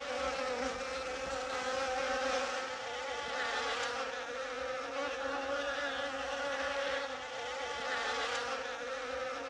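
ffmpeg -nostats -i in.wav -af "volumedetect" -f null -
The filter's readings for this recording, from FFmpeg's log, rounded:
mean_volume: -37.2 dB
max_volume: -22.4 dB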